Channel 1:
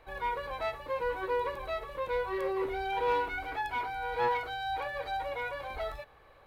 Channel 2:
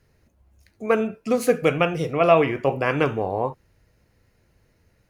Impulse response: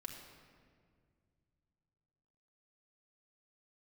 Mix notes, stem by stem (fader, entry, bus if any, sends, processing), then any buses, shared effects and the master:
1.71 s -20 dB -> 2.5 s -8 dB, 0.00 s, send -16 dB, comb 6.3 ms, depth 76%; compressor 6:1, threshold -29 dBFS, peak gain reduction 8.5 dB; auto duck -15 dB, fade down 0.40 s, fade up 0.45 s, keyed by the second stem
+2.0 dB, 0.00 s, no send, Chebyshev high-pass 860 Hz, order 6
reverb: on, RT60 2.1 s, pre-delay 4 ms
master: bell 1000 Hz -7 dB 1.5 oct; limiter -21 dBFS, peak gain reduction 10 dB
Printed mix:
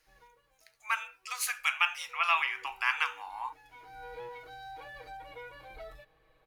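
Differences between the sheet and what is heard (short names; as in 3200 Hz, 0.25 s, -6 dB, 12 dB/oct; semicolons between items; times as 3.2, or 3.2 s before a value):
stem 1: send -16 dB -> -23.5 dB; master: missing limiter -21 dBFS, peak gain reduction 10 dB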